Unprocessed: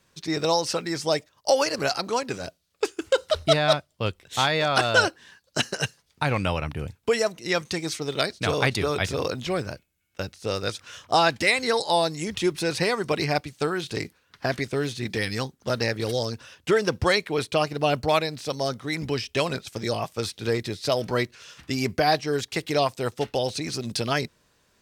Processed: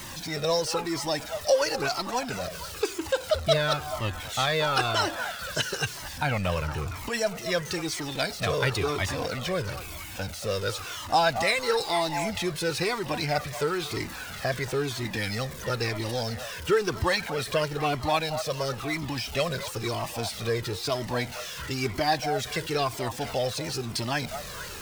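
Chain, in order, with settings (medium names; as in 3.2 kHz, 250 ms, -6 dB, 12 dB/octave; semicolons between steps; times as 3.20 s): jump at every zero crossing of -29.5 dBFS; repeats whose band climbs or falls 231 ms, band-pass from 870 Hz, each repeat 0.7 oct, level -6.5 dB; Shepard-style flanger falling 1 Hz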